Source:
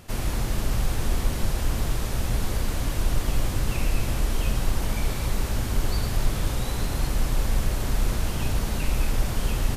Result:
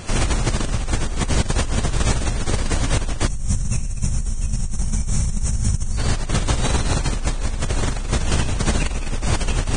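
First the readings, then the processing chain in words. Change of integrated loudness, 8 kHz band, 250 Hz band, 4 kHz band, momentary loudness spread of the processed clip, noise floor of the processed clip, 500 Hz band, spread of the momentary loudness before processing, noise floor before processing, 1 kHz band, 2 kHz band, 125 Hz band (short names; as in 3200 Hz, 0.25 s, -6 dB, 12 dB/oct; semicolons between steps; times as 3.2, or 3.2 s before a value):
+5.0 dB, +8.5 dB, +6.0 dB, +6.0 dB, 5 LU, -25 dBFS, +5.0 dB, 1 LU, -29 dBFS, +5.5 dB, +6.0 dB, +5.0 dB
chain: negative-ratio compressor -28 dBFS, ratio -1; spectral gain 3.27–5.97, 220–5300 Hz -14 dB; gain +8 dB; Vorbis 16 kbps 22050 Hz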